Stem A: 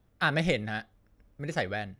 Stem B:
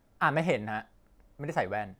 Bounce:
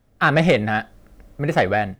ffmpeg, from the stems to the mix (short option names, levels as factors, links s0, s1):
-filter_complex "[0:a]volume=1.26[s0];[1:a]bandreject=f=900:w=6.3,dynaudnorm=f=160:g=3:m=4.47,asoftclip=type=tanh:threshold=0.251,volume=1[s1];[s0][s1]amix=inputs=2:normalize=0"